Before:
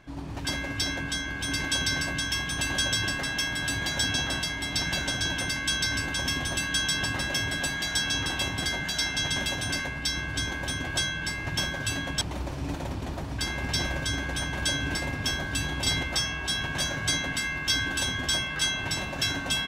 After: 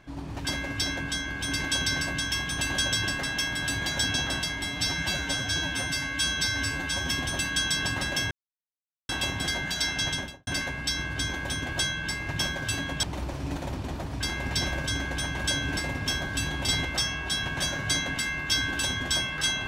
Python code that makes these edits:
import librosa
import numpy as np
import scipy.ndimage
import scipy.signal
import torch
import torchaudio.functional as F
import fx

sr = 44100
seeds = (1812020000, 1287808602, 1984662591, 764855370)

y = fx.studio_fade_out(x, sr, start_s=9.26, length_s=0.39)
y = fx.edit(y, sr, fx.stretch_span(start_s=4.64, length_s=1.64, factor=1.5),
    fx.silence(start_s=7.49, length_s=0.78), tone=tone)